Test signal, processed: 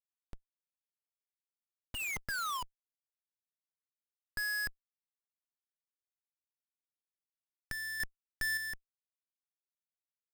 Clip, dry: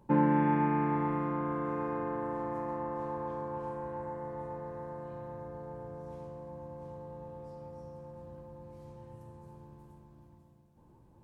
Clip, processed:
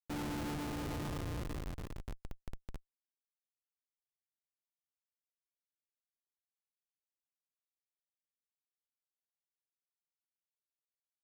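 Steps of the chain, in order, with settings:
thirty-one-band graphic EQ 100 Hz −11 dB, 200 Hz −8 dB, 500 Hz −4 dB, 1,250 Hz +10 dB, 2,500 Hz +5 dB
comparator with hysteresis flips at −26.5 dBFS
sample-and-hold tremolo 3.5 Hz

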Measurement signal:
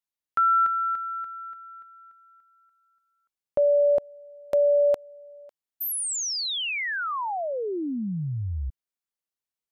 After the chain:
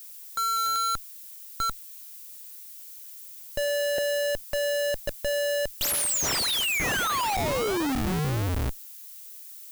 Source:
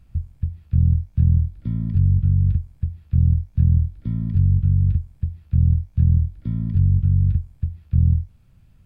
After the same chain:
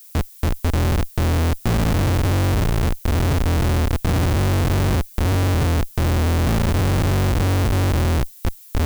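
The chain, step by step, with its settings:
delay that plays each chunk backwards 566 ms, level −4 dB
comparator with hysteresis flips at −28.5 dBFS
background noise violet −44 dBFS

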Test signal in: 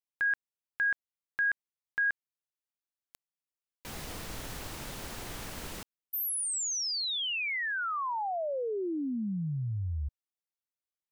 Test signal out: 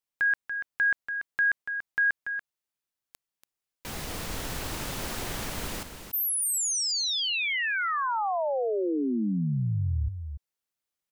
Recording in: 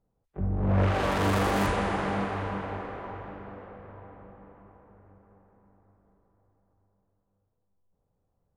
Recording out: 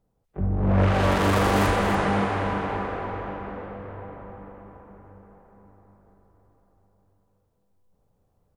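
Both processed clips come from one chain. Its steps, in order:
in parallel at −3 dB: speech leveller within 5 dB 2 s
on the sum: single-tap delay 286 ms −8.5 dB

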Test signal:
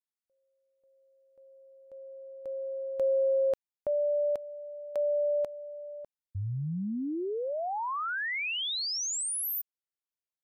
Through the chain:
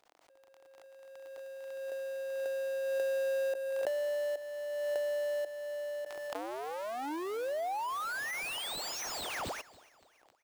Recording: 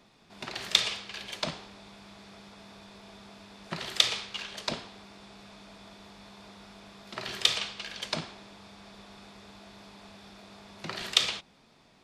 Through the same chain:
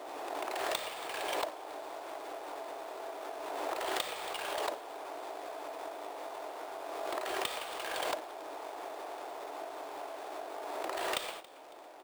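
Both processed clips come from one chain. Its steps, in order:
each half-wave held at its own peak
surface crackle 37 per second −43 dBFS
elliptic high-pass filter 300 Hz, stop band 40 dB
high-shelf EQ 4,700 Hz −5.5 dB
sample-rate reduction 12,000 Hz, jitter 0%
parametric band 710 Hz +11 dB 1.4 octaves
downward compressor 3 to 1, threshold −39 dBFS
on a send: repeating echo 277 ms, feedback 47%, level −21 dB
on the sum: background raised ahead of every attack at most 22 dB per second

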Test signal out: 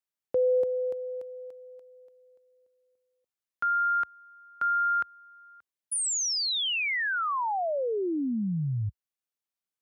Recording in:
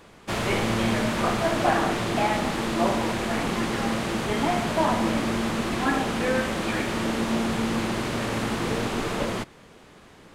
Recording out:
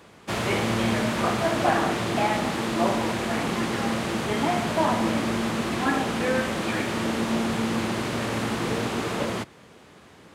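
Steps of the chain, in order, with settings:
high-pass filter 62 Hz 24 dB per octave

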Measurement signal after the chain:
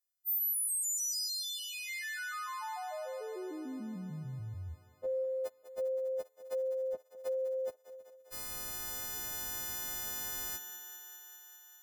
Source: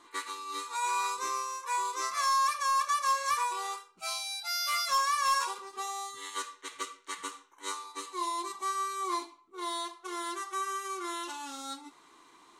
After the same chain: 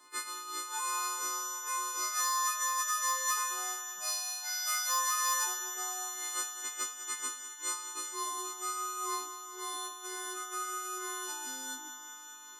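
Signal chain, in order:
every partial snapped to a pitch grid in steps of 3 semitones
parametric band 2,800 Hz −6.5 dB 0.52 octaves
feedback echo with a high-pass in the loop 200 ms, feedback 78%, high-pass 250 Hz, level −12.5 dB
level −5.5 dB

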